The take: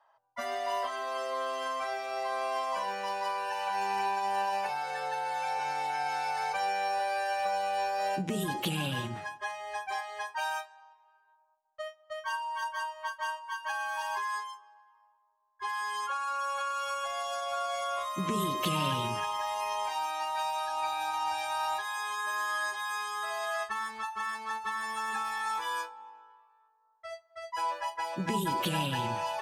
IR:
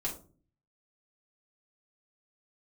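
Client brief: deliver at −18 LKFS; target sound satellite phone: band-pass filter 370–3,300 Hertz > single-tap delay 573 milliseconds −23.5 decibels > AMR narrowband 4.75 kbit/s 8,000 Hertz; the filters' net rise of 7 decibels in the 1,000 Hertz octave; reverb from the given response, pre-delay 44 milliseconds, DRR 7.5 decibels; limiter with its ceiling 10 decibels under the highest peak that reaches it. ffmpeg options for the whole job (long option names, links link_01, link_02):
-filter_complex "[0:a]equalizer=frequency=1000:width_type=o:gain=8.5,alimiter=limit=-23.5dB:level=0:latency=1,asplit=2[link_01][link_02];[1:a]atrim=start_sample=2205,adelay=44[link_03];[link_02][link_03]afir=irnorm=-1:irlink=0,volume=-10.5dB[link_04];[link_01][link_04]amix=inputs=2:normalize=0,highpass=370,lowpass=3300,aecho=1:1:573:0.0668,volume=14dB" -ar 8000 -c:a libopencore_amrnb -b:a 4750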